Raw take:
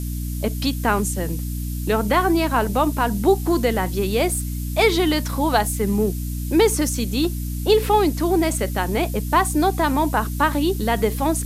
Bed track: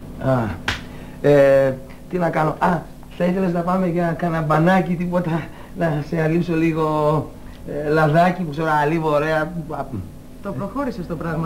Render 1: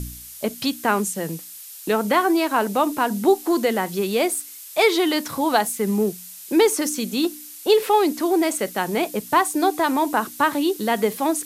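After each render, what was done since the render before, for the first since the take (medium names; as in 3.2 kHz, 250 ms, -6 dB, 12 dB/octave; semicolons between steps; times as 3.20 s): de-hum 60 Hz, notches 5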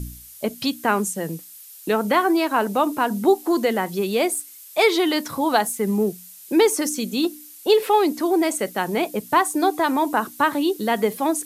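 noise reduction 6 dB, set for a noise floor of -40 dBFS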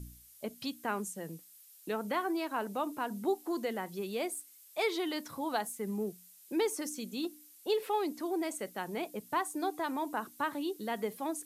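trim -14.5 dB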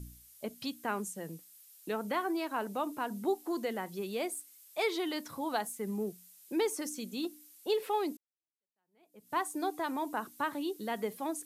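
8.17–9.37 s: fade in exponential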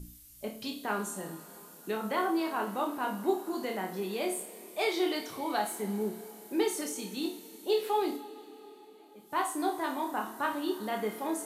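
flutter echo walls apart 4.7 m, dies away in 0.28 s; two-slope reverb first 0.37 s, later 4.4 s, from -18 dB, DRR 4 dB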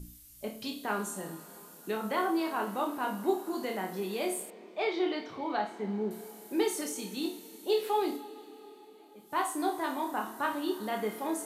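4.50–6.11 s: distance through air 200 m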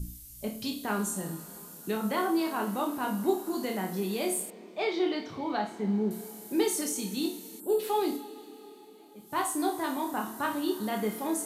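7.60–7.80 s: time-frequency box 1.7–7.2 kHz -22 dB; tone controls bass +10 dB, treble +6 dB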